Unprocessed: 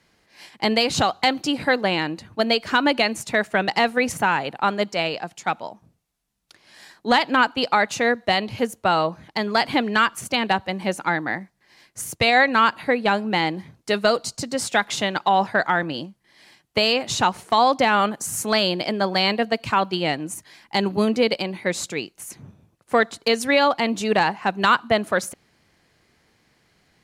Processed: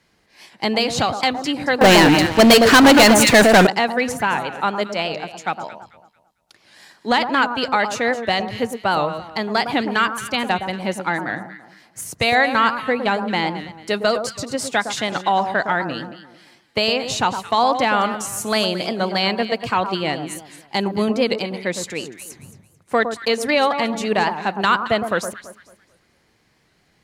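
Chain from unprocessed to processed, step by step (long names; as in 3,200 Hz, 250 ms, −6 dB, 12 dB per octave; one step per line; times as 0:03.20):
delay that swaps between a low-pass and a high-pass 111 ms, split 1,300 Hz, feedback 53%, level −7.5 dB
0:01.81–0:03.67: leveller curve on the samples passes 5
wow of a warped record 78 rpm, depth 100 cents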